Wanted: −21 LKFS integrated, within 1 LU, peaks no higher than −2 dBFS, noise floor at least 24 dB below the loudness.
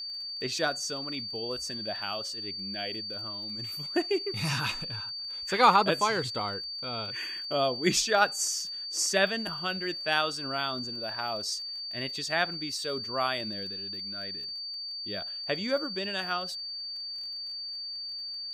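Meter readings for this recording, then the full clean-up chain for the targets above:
crackle rate 22 per second; interfering tone 4,600 Hz; level of the tone −35 dBFS; integrated loudness −30.0 LKFS; sample peak −8.5 dBFS; target loudness −21.0 LKFS
→ click removal
notch filter 4,600 Hz, Q 30
level +9 dB
brickwall limiter −2 dBFS

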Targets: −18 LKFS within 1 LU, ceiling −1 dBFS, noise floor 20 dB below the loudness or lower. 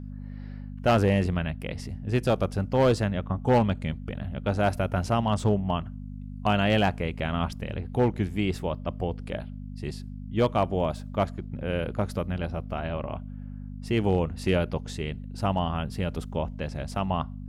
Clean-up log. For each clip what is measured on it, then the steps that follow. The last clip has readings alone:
share of clipped samples 0.5%; peaks flattened at −15.0 dBFS; mains hum 50 Hz; hum harmonics up to 250 Hz; level of the hum −35 dBFS; integrated loudness −28.0 LKFS; sample peak −15.0 dBFS; target loudness −18.0 LKFS
→ clipped peaks rebuilt −15 dBFS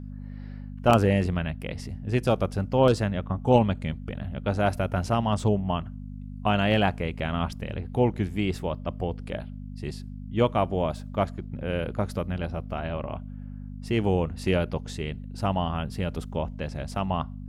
share of clipped samples 0.0%; mains hum 50 Hz; hum harmonics up to 250 Hz; level of the hum −35 dBFS
→ hum removal 50 Hz, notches 5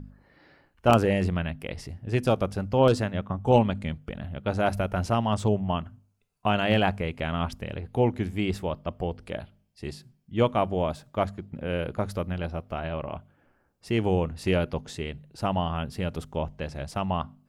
mains hum none found; integrated loudness −27.5 LKFS; sample peak −6.5 dBFS; target loudness −18.0 LKFS
→ level +9.5 dB
brickwall limiter −1 dBFS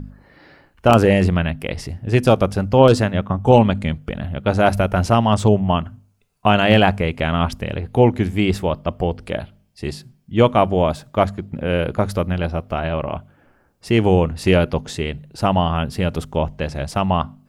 integrated loudness −18.5 LKFS; sample peak −1.0 dBFS; background noise floor −58 dBFS

